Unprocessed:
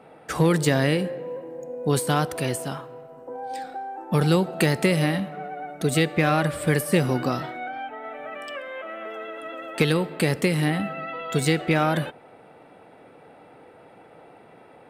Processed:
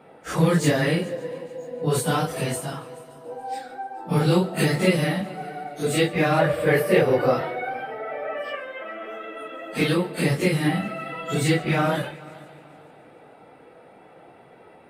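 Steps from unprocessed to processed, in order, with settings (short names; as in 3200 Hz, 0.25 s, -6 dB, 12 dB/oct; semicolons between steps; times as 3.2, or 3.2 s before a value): phase scrambler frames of 0.1 s; 6.39–8.55 ten-band EQ 250 Hz -6 dB, 500 Hz +11 dB, 2000 Hz +4 dB, 8000 Hz -11 dB; multi-head echo 0.143 s, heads first and third, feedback 50%, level -22 dB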